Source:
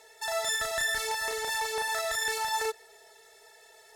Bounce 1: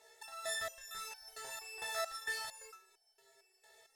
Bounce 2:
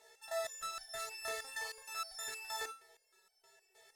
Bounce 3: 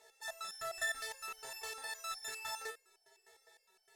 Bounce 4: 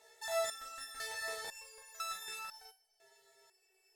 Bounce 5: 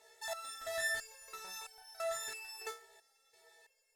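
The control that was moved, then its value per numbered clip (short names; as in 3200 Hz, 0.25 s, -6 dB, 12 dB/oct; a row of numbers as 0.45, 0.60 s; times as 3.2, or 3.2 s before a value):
stepped resonator, rate: 4.4, 6.4, 9.8, 2, 3 Hz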